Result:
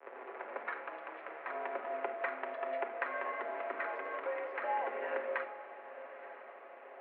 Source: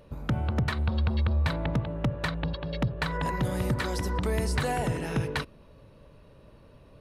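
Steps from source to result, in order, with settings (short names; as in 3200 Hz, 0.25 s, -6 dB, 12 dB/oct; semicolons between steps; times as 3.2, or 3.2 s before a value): tape start at the beginning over 0.75 s; compressor 8:1, threshold -33 dBFS, peak gain reduction 11.5 dB; companded quantiser 4-bit; diffused feedback echo 0.942 s, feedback 41%, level -14 dB; on a send at -4.5 dB: reverb RT60 0.80 s, pre-delay 7 ms; on the sum: mistuned SSB +98 Hz 350–2200 Hz; gain +1.5 dB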